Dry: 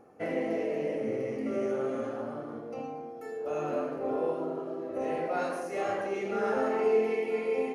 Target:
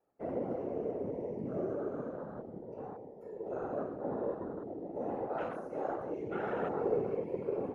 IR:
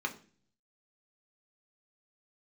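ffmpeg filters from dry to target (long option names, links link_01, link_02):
-filter_complex "[0:a]afwtdn=0.0158,acrossover=split=180|1300[link_01][link_02][link_03];[link_01]acompressor=threshold=-60dB:ratio=6[link_04];[link_04][link_02][link_03]amix=inputs=3:normalize=0,afftfilt=real='hypot(re,im)*cos(2*PI*random(0))':imag='hypot(re,im)*sin(2*PI*random(1))':win_size=512:overlap=0.75,adynamicequalizer=threshold=0.00141:dfrequency=110:dqfactor=0.71:tfrequency=110:tqfactor=0.71:attack=5:release=100:ratio=0.375:range=3:mode=boostabove:tftype=bell"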